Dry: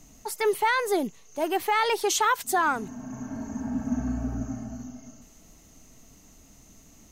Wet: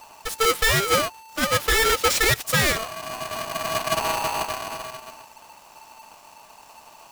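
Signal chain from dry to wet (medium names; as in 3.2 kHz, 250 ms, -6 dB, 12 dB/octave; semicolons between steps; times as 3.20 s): square wave that keeps the level; polarity switched at an audio rate 890 Hz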